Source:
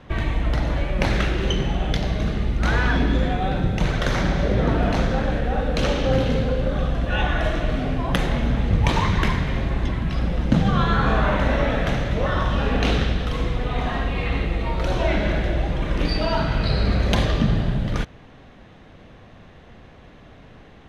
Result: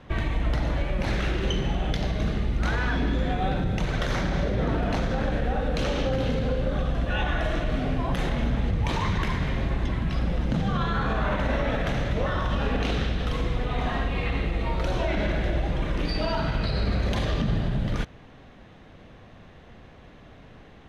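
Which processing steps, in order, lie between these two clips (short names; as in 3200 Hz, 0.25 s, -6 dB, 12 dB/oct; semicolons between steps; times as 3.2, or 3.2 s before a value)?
limiter -14 dBFS, peak gain reduction 10 dB; gain -2.5 dB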